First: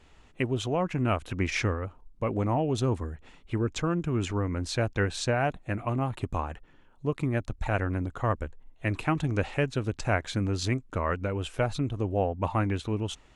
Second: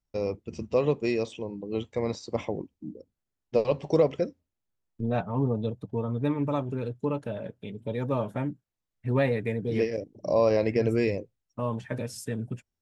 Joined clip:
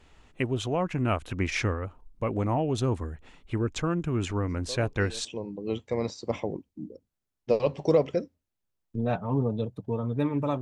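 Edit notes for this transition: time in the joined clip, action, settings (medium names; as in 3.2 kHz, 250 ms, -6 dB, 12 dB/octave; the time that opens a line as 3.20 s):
first
4.37 s: add second from 0.42 s 0.88 s -17 dB
5.25 s: go over to second from 1.30 s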